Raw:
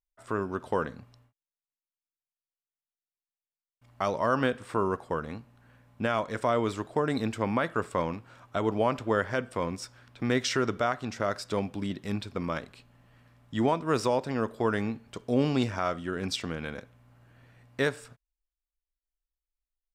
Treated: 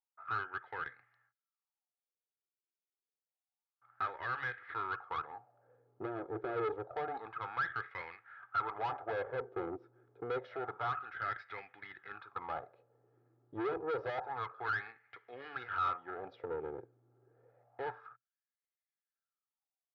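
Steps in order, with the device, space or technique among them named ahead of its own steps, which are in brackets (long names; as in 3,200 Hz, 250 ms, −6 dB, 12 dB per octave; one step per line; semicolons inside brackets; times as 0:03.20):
wah-wah guitar rig (LFO wah 0.28 Hz 350–2,000 Hz, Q 6.1; tube saturation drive 44 dB, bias 0.65; loudspeaker in its box 99–3,600 Hz, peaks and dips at 120 Hz +9 dB, 230 Hz −6 dB, 720 Hz +6 dB, 1,400 Hz +9 dB, 2,800 Hz −6 dB)
comb filter 2.4 ms, depth 53%
level +7.5 dB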